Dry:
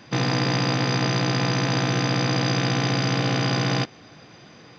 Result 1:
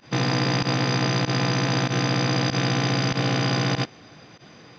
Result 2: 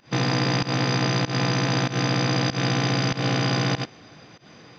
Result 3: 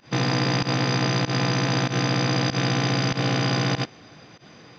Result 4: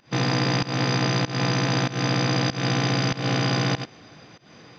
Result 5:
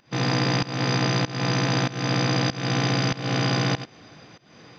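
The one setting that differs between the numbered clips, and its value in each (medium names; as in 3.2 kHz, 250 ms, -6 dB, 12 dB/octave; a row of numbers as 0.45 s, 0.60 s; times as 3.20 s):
volume shaper, release: 67 ms, 147 ms, 99 ms, 219 ms, 325 ms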